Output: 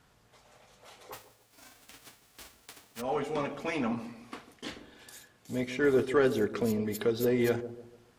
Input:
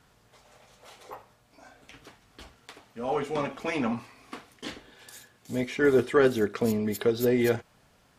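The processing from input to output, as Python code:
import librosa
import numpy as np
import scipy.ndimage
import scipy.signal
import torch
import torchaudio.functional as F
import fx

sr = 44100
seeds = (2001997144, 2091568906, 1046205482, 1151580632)

p1 = fx.envelope_flatten(x, sr, power=0.3, at=(1.12, 3.0), fade=0.02)
p2 = 10.0 ** (-24.5 / 20.0) * np.tanh(p1 / 10.0 ** (-24.5 / 20.0))
p3 = p1 + (p2 * 10.0 ** (-9.5 / 20.0))
p4 = fx.echo_wet_lowpass(p3, sr, ms=147, feedback_pct=36, hz=680.0, wet_db=-11.0)
y = p4 * 10.0 ** (-5.0 / 20.0)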